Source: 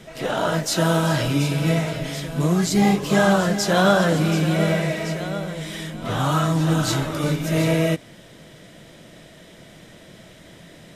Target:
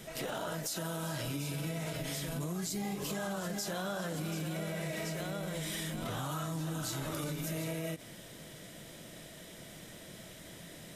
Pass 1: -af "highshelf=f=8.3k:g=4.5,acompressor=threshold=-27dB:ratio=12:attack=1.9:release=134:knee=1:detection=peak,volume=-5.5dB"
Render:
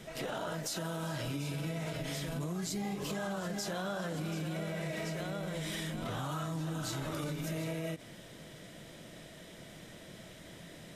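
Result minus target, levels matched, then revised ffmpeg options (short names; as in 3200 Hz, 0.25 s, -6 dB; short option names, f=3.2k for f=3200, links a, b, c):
8000 Hz band -3.0 dB
-af "highshelf=f=8.3k:g=15.5,acompressor=threshold=-27dB:ratio=12:attack=1.9:release=134:knee=1:detection=peak,volume=-5.5dB"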